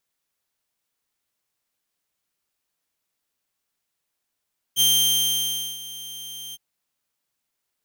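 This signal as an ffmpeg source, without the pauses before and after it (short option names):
-f lavfi -i "aevalsrc='0.237*(2*mod(3160*t,1)-1)':d=1.813:s=44100,afade=t=in:d=0.044,afade=t=out:st=0.044:d=0.97:silence=0.112,afade=t=out:st=1.78:d=0.033"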